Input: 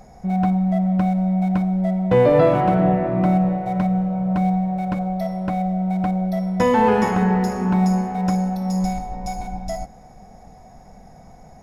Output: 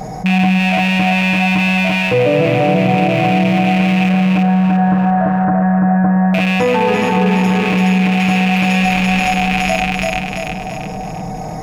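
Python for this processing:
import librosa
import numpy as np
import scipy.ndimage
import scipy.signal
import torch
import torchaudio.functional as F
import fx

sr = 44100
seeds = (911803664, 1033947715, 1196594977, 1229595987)

y = fx.rattle_buzz(x, sr, strikes_db=-30.0, level_db=-12.0)
y = fx.cheby1_lowpass(y, sr, hz=1700.0, order=6, at=(4.09, 6.34))
y = fx.echo_feedback(y, sr, ms=339, feedback_pct=36, wet_db=-3.0)
y = fx.rider(y, sr, range_db=4, speed_s=0.5)
y = fx.highpass(y, sr, hz=140.0, slope=6)
y = fx.low_shelf(y, sr, hz=430.0, db=6.0)
y = y + 0.65 * np.pad(y, (int(6.5 * sr / 1000.0), 0))[:len(y)]
y = fx.env_flatten(y, sr, amount_pct=50)
y = y * 10.0 ** (-1.0 / 20.0)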